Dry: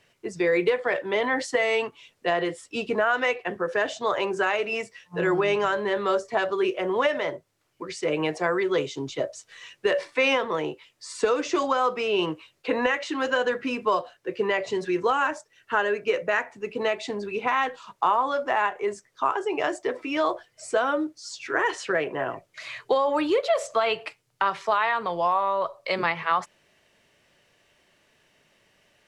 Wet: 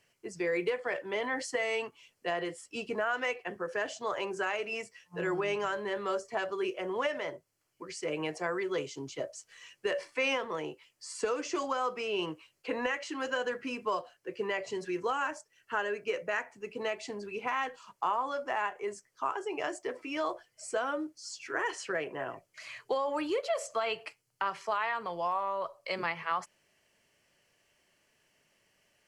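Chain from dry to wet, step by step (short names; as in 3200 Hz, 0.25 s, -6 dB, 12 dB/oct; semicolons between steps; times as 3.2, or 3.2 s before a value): high shelf 4400 Hz +7.5 dB; notch 3700 Hz, Q 6; gain -9 dB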